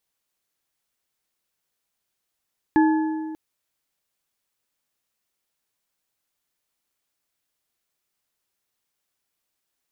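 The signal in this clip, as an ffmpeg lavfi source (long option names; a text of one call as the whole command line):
ffmpeg -f lavfi -i "aevalsrc='0.224*pow(10,-3*t/1.94)*sin(2*PI*315*t)+0.106*pow(10,-3*t/1.431)*sin(2*PI*868.5*t)+0.0501*pow(10,-3*t/1.169)*sin(2*PI*1702.3*t)':duration=0.59:sample_rate=44100" out.wav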